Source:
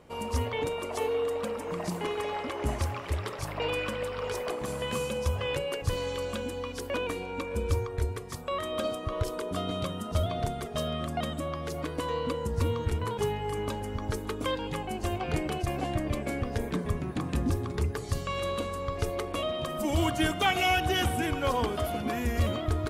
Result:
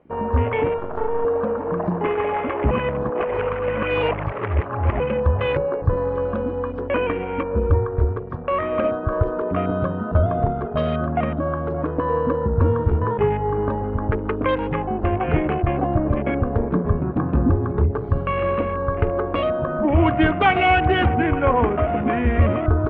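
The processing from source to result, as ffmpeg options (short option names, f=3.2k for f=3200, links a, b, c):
-filter_complex "[0:a]asettb=1/sr,asplit=3[a][b][c];[a]atrim=end=0.784[d];[b]atrim=start=0.78:end=1.25,asetpts=PTS-STARTPTS,afade=t=in:d=0.004:c=qsin,afade=t=out:st=0.466:d=0.004:c=qsin,aeval=exprs='max(val(0),0)':c=same[e];[c]atrim=start=1.246[f];[d][e]acrossfade=d=0.004:c1=hsin:c2=qsin[g];[g][f]acrossfade=d=0.004:c1=qsin:c2=hsin,asettb=1/sr,asplit=3[h][i][j];[h]atrim=end=5.524[k];[i]atrim=start=5.52:end=6.17,asetpts=PTS-STARTPTS,afade=t=in:d=0.004:c=qsin,afade=t=out:st=0.646:d=0.004:c=qsin,equalizer=f=2.9k:w=3.4:g=-11[l];[j]atrim=start=6.166[m];[k][l]acrossfade=d=0.004:c1=hsin:c2=qsin[n];[n][m]acrossfade=d=0.004:c1=qsin:c2=hsin,asettb=1/sr,asplit=3[o][p][q];[o]atrim=end=19.444[r];[p]atrim=start=19.44:end=21.79,asetpts=PTS-STARTPTS,afade=t=in:d=0.004:c=qsin,afade=t=out:st=2.346:d=0.004:c=qsin,aemphasis=mode=reproduction:type=50kf[s];[q]atrim=start=21.786[t];[r][s]acrossfade=d=0.004:c1=hsin:c2=qsin[u];[u][t]acrossfade=d=0.004:c1=qsin:c2=hsin,asplit=3[v][w][x];[v]atrim=end=2.712[y];[w]atrim=start=2.708:end=5.002,asetpts=PTS-STARTPTS,areverse[z];[x]atrim=start=4.998[aa];[y][z]acrossfade=d=0.004:c1=hsin:c2=hsin[ab];[ab][aa]acrossfade=d=0.004:c1=hsin:c2=hsin,afwtdn=0.01,lowpass=f=2.6k:w=0.5412,lowpass=f=2.6k:w=1.3066,acontrast=81,volume=3.5dB"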